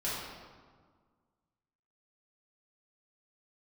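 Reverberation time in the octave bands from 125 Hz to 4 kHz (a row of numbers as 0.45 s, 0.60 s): 2.0 s, 2.0 s, 1.6 s, 1.7 s, 1.2 s, 1.0 s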